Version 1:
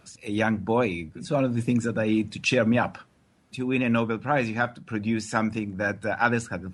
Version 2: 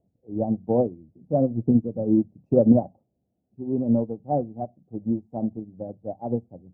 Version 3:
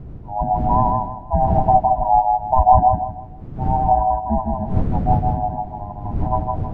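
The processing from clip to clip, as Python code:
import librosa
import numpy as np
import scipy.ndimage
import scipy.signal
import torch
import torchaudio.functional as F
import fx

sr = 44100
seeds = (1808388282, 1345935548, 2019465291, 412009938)

y1 = scipy.signal.sosfilt(scipy.signal.ellip(4, 1.0, 50, 730.0, 'lowpass', fs=sr, output='sos'), x)
y1 = fx.upward_expand(y1, sr, threshold_db=-33.0, expansion=2.5)
y1 = y1 * 10.0 ** (8.5 / 20.0)
y2 = fx.band_swap(y1, sr, width_hz=500)
y2 = fx.dmg_wind(y2, sr, seeds[0], corner_hz=130.0, level_db=-30.0)
y2 = fx.echo_feedback(y2, sr, ms=159, feedback_pct=30, wet_db=-3)
y2 = y2 * 10.0 ** (4.0 / 20.0)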